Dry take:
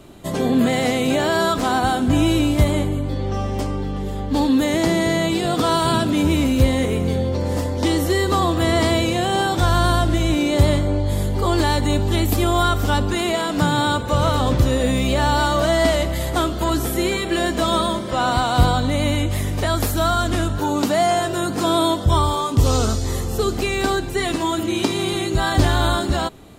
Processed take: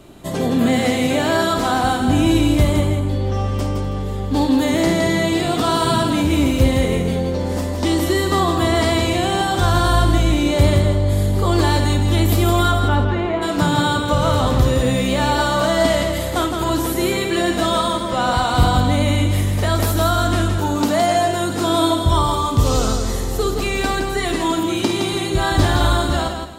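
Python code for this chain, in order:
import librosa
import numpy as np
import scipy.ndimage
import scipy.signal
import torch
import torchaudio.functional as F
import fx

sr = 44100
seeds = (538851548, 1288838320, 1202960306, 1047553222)

y = fx.lowpass(x, sr, hz=fx.line((12.71, 3200.0), (13.41, 1400.0)), slope=12, at=(12.71, 13.41), fade=0.02)
y = fx.echo_multitap(y, sr, ms=(52, 165, 257, 325), db=(-9.0, -6.0, -19.0, -17.0))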